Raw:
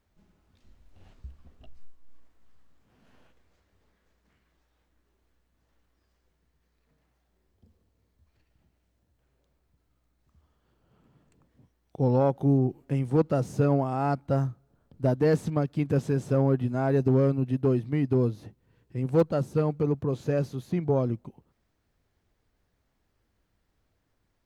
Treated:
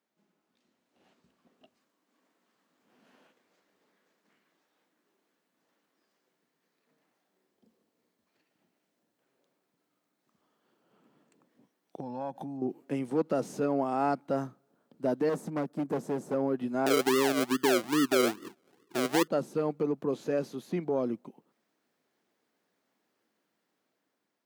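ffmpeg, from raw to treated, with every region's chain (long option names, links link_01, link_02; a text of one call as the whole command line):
ffmpeg -i in.wav -filter_complex "[0:a]asettb=1/sr,asplit=3[link_01][link_02][link_03];[link_01]atrim=end=12.004[link_04];[link_02]atrim=start=12:end=12.62,asetpts=PTS-STARTPTS,afade=type=in:duration=0.004:curve=qsin,afade=type=out:start_time=0.616:duration=0.004:curve=qsin,aecho=1:1:1.2:0.75,atrim=end_sample=27342,acompressor=threshold=-30dB:ratio=12:attack=3.2:release=140:knee=1:detection=peak[link_05];[link_03]atrim=start=12.616[link_06];[link_04][link_05]acrossfade=duration=0.004:curve1=hsin:curve2=qsin[link_07];[link_07][link_06]acrossfade=duration=0.004:curve1=qsin:curve2=hsin,asettb=1/sr,asplit=3[link_08][link_09][link_10];[link_08]atrim=end=15.294[link_11];[link_09]atrim=start=15.29:end=16.34,asetpts=PTS-STARTPTS,afade=type=in:duration=0.004:curve=qsin,afade=type=out:start_time=1.046:duration=0.004:curve=qsin,highpass=frequency=56:width=0.5412,highpass=frequency=56:width=1.3066,equalizer=frequency=3100:width=0.78:gain=-13.5,asoftclip=type=hard:threshold=-23.5dB[link_12];[link_10]atrim=start=16.336[link_13];[link_11][link_12]acrossfade=duration=0.004:curve1=hsin:curve2=qsin[link_14];[link_14][link_13]acrossfade=duration=0.004:curve1=qsin:curve2=hsin,asettb=1/sr,asplit=3[link_15][link_16][link_17];[link_15]atrim=end=16.864[link_18];[link_16]atrim=start=16.86:end=19.28,asetpts=PTS-STARTPTS,afade=type=in:duration=0.004:curve=qsin,afade=type=out:start_time=2.416:duration=0.004:curve=qsin,lowpass=frequency=380:width_type=q:width=3.6,acrusher=samples=39:mix=1:aa=0.000001:lfo=1:lforange=23.4:lforate=2.4[link_19];[link_17]atrim=start=19.276[link_20];[link_18][link_19]acrossfade=duration=0.004:curve1=hsin:curve2=qsin[link_21];[link_21][link_20]acrossfade=duration=0.004:curve1=qsin:curve2=hsin,alimiter=limit=-18.5dB:level=0:latency=1:release=94,highpass=frequency=210:width=0.5412,highpass=frequency=210:width=1.3066,dynaudnorm=framelen=660:gausssize=5:maxgain=7dB,volume=-6.5dB" out.wav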